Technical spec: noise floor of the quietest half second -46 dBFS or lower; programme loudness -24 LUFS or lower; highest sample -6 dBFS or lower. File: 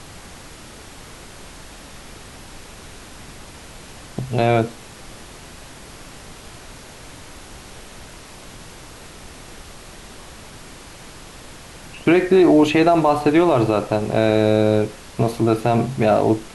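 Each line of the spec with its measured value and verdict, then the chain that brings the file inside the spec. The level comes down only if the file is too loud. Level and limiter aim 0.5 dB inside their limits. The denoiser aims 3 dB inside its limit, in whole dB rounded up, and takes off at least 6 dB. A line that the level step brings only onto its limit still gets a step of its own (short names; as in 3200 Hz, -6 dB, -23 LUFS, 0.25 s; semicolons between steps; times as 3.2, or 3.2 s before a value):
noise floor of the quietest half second -40 dBFS: fail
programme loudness -17.5 LUFS: fail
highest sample -5.0 dBFS: fail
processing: gain -7 dB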